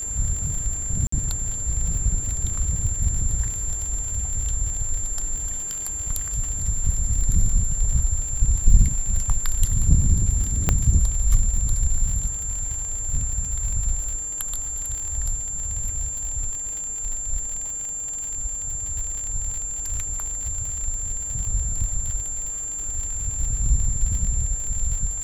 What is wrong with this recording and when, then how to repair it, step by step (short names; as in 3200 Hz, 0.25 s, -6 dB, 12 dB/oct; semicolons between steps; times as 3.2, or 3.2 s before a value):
crackle 56/s -28 dBFS
tone 7300 Hz -27 dBFS
1.07–1.12 gap 54 ms
10.69 pop -5 dBFS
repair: de-click; notch 7300 Hz, Q 30; interpolate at 1.07, 54 ms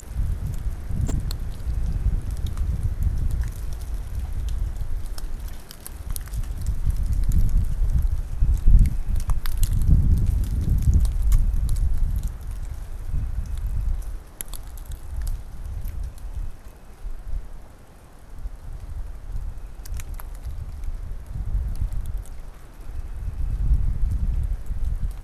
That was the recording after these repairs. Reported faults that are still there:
none